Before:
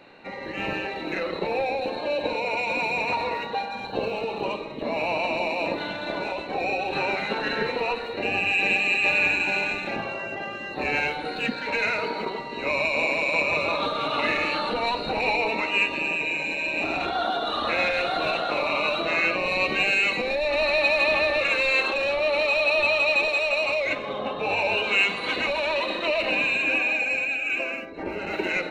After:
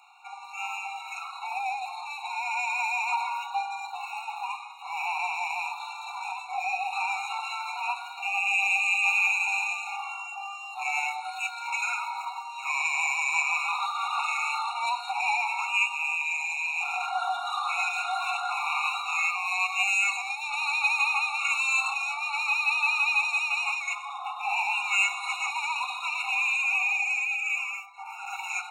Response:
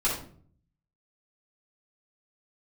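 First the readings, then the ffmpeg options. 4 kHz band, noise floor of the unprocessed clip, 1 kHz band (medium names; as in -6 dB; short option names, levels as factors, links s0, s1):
-6.0 dB, -34 dBFS, -0.5 dB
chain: -af "highshelf=f=5600:t=q:w=3:g=8.5,afftfilt=real='re*eq(mod(floor(b*sr/1024/720),2),1)':imag='im*eq(mod(floor(b*sr/1024/720),2),1)':win_size=1024:overlap=0.75"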